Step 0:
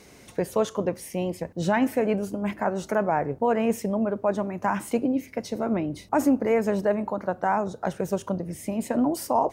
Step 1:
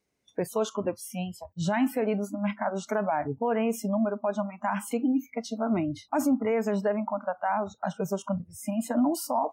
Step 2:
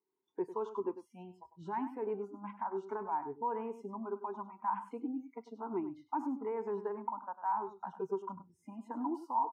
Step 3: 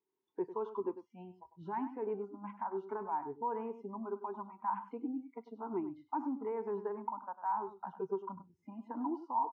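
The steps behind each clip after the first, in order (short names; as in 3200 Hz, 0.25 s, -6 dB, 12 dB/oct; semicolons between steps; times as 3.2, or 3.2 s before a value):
spectral noise reduction 29 dB; limiter -17.5 dBFS, peak gain reduction 5 dB
double band-pass 600 Hz, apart 1.3 oct; echo 99 ms -12.5 dB
air absorption 230 m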